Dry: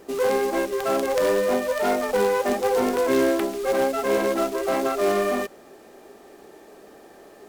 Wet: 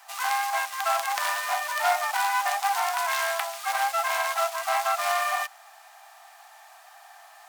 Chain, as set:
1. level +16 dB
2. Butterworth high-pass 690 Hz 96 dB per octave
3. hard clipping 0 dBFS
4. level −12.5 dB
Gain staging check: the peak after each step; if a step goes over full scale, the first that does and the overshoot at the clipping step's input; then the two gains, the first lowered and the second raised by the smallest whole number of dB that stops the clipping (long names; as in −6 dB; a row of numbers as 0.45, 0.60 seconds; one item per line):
+7.0, +6.0, 0.0, −12.5 dBFS
step 1, 6.0 dB
step 1 +10 dB, step 4 −6.5 dB